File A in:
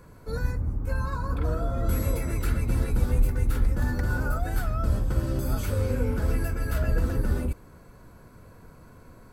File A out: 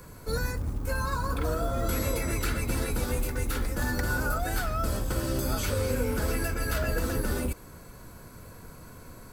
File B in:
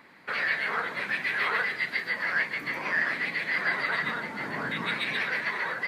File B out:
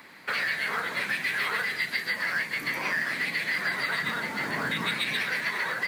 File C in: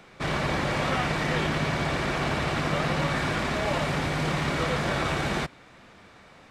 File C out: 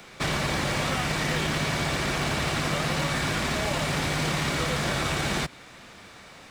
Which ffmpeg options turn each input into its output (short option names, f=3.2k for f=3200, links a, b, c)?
-filter_complex "[0:a]highshelf=f=3.3k:g=10.5,acrossover=split=250|6300[a][b][c];[a]acompressor=threshold=-31dB:ratio=4[d];[b]acompressor=threshold=-29dB:ratio=4[e];[c]acompressor=threshold=-43dB:ratio=4[f];[d][e][f]amix=inputs=3:normalize=0,acrusher=bits=7:mode=log:mix=0:aa=0.000001,volume=2.5dB"